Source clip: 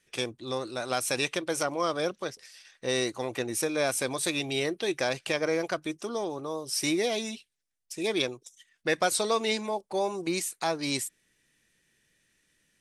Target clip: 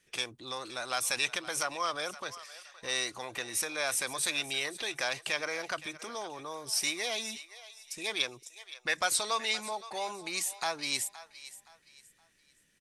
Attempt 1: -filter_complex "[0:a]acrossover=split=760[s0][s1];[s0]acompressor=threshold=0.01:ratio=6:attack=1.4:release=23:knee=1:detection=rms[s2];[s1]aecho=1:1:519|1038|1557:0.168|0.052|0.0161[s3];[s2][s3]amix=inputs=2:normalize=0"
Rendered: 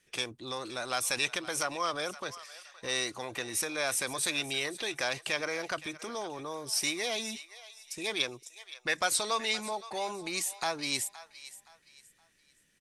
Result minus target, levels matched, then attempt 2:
compression: peak gain reduction -5.5 dB
-filter_complex "[0:a]acrossover=split=760[s0][s1];[s0]acompressor=threshold=0.00473:ratio=6:attack=1.4:release=23:knee=1:detection=rms[s2];[s1]aecho=1:1:519|1038|1557:0.168|0.052|0.0161[s3];[s2][s3]amix=inputs=2:normalize=0"

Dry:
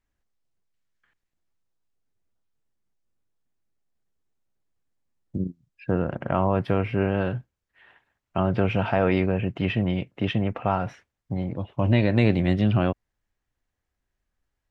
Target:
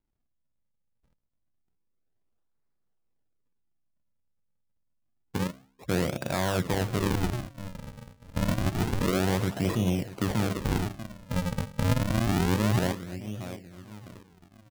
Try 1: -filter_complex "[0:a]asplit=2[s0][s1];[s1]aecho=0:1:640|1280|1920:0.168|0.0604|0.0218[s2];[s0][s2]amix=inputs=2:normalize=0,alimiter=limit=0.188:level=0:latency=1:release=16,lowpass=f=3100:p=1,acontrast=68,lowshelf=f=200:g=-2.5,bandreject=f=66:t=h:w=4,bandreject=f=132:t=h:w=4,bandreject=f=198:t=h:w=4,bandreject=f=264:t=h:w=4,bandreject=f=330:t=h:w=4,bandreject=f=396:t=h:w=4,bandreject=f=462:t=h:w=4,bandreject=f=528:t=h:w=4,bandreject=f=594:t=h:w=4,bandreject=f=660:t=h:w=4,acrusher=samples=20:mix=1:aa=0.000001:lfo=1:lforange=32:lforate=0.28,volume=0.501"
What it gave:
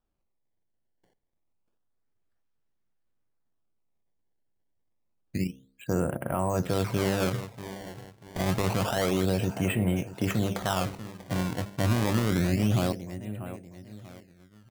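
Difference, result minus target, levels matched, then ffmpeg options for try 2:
decimation with a swept rate: distortion -10 dB
-filter_complex "[0:a]asplit=2[s0][s1];[s1]aecho=0:1:640|1280|1920:0.168|0.0604|0.0218[s2];[s0][s2]amix=inputs=2:normalize=0,alimiter=limit=0.188:level=0:latency=1:release=16,lowpass=f=3100:p=1,acontrast=68,lowshelf=f=200:g=-2.5,bandreject=f=66:t=h:w=4,bandreject=f=132:t=h:w=4,bandreject=f=198:t=h:w=4,bandreject=f=264:t=h:w=4,bandreject=f=330:t=h:w=4,bandreject=f=396:t=h:w=4,bandreject=f=462:t=h:w=4,bandreject=f=528:t=h:w=4,bandreject=f=594:t=h:w=4,bandreject=f=660:t=h:w=4,acrusher=samples=70:mix=1:aa=0.000001:lfo=1:lforange=112:lforate=0.28,volume=0.501"

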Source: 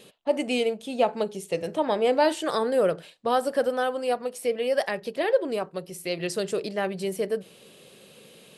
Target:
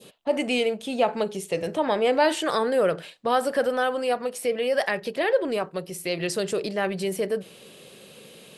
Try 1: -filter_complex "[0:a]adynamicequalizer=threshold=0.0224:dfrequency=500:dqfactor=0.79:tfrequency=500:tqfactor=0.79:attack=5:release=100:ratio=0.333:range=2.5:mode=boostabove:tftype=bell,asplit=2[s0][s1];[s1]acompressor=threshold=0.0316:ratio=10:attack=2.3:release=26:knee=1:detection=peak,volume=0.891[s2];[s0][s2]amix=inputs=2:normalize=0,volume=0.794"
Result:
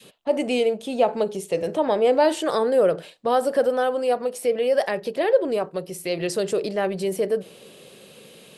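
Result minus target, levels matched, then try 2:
2 kHz band -6.0 dB
-filter_complex "[0:a]adynamicequalizer=threshold=0.0224:dfrequency=1900:dqfactor=0.79:tfrequency=1900:tqfactor=0.79:attack=5:release=100:ratio=0.333:range=2.5:mode=boostabove:tftype=bell,asplit=2[s0][s1];[s1]acompressor=threshold=0.0316:ratio=10:attack=2.3:release=26:knee=1:detection=peak,volume=0.891[s2];[s0][s2]amix=inputs=2:normalize=0,volume=0.794"

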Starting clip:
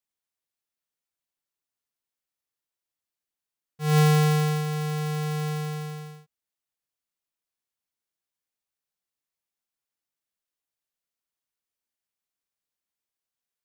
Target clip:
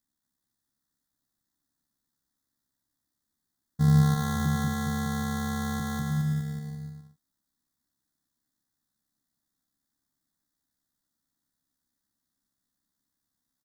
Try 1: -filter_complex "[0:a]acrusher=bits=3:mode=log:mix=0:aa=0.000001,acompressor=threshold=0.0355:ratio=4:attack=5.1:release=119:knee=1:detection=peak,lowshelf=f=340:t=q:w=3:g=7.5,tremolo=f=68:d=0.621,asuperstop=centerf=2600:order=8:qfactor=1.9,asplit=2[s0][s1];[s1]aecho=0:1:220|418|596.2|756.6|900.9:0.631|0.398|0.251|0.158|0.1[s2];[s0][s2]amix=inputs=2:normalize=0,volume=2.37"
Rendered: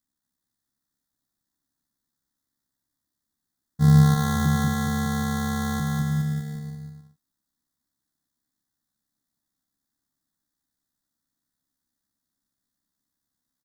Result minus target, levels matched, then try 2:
compression: peak gain reduction -5 dB
-filter_complex "[0:a]acrusher=bits=3:mode=log:mix=0:aa=0.000001,acompressor=threshold=0.0168:ratio=4:attack=5.1:release=119:knee=1:detection=peak,lowshelf=f=340:t=q:w=3:g=7.5,tremolo=f=68:d=0.621,asuperstop=centerf=2600:order=8:qfactor=1.9,asplit=2[s0][s1];[s1]aecho=0:1:220|418|596.2|756.6|900.9:0.631|0.398|0.251|0.158|0.1[s2];[s0][s2]amix=inputs=2:normalize=0,volume=2.37"

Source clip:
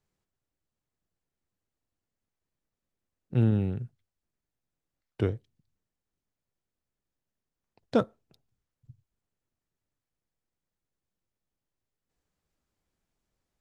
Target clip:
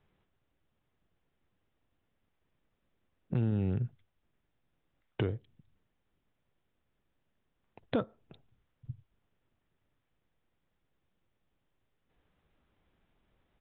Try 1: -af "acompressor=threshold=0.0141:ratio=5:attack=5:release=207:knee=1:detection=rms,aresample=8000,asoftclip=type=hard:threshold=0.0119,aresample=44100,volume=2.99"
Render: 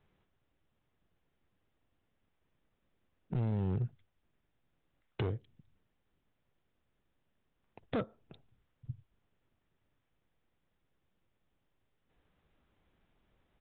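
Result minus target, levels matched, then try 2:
hard clipper: distortion +21 dB
-af "acompressor=threshold=0.0141:ratio=5:attack=5:release=207:knee=1:detection=rms,aresample=8000,asoftclip=type=hard:threshold=0.0299,aresample=44100,volume=2.99"

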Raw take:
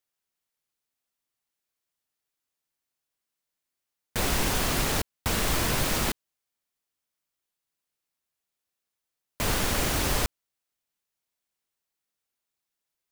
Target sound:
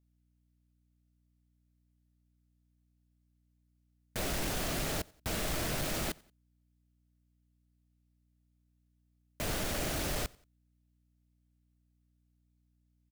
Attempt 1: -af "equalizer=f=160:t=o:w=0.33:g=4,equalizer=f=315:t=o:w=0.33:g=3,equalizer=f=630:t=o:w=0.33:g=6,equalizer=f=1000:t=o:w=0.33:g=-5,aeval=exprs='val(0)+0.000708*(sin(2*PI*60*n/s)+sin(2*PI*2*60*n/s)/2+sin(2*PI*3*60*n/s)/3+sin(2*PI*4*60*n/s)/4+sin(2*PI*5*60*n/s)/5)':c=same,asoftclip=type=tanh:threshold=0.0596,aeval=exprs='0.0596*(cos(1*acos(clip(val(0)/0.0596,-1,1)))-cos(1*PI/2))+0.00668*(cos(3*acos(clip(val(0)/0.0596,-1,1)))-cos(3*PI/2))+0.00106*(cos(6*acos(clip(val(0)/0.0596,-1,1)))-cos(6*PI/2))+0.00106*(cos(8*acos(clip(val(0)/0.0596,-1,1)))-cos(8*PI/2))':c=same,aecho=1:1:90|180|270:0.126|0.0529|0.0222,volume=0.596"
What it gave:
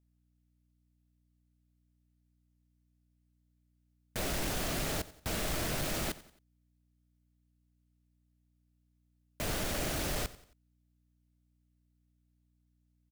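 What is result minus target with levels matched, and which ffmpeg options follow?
echo-to-direct +7.5 dB
-af "equalizer=f=160:t=o:w=0.33:g=4,equalizer=f=315:t=o:w=0.33:g=3,equalizer=f=630:t=o:w=0.33:g=6,equalizer=f=1000:t=o:w=0.33:g=-5,aeval=exprs='val(0)+0.000708*(sin(2*PI*60*n/s)+sin(2*PI*2*60*n/s)/2+sin(2*PI*3*60*n/s)/3+sin(2*PI*4*60*n/s)/4+sin(2*PI*5*60*n/s)/5)':c=same,asoftclip=type=tanh:threshold=0.0596,aeval=exprs='0.0596*(cos(1*acos(clip(val(0)/0.0596,-1,1)))-cos(1*PI/2))+0.00668*(cos(3*acos(clip(val(0)/0.0596,-1,1)))-cos(3*PI/2))+0.00106*(cos(6*acos(clip(val(0)/0.0596,-1,1)))-cos(6*PI/2))+0.00106*(cos(8*acos(clip(val(0)/0.0596,-1,1)))-cos(8*PI/2))':c=same,aecho=1:1:90|180:0.0531|0.0223,volume=0.596"

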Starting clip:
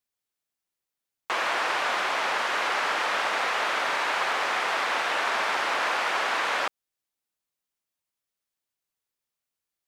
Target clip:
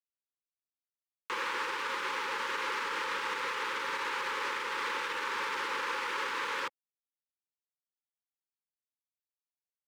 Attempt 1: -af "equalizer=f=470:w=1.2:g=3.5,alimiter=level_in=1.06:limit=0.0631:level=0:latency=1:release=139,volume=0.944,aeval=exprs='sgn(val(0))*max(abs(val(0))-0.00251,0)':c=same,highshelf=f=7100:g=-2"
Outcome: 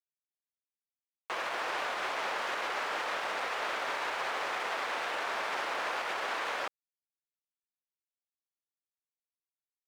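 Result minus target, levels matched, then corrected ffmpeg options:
500 Hz band +3.0 dB
-af "asuperstop=centerf=680:order=20:qfactor=2.5,equalizer=f=470:w=1.2:g=3.5,alimiter=level_in=1.06:limit=0.0631:level=0:latency=1:release=139,volume=0.944,aeval=exprs='sgn(val(0))*max(abs(val(0))-0.00251,0)':c=same,highshelf=f=7100:g=-2"

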